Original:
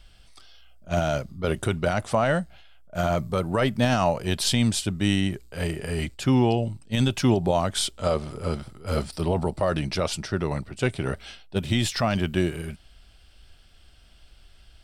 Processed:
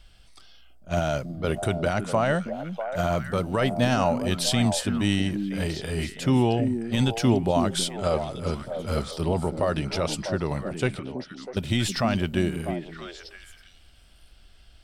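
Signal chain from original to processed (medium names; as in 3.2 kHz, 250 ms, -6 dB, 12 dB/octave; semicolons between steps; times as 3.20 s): 10.99–11.57 s: cascade formant filter i; repeats whose band climbs or falls 323 ms, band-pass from 240 Hz, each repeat 1.4 oct, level -3.5 dB; trim -1 dB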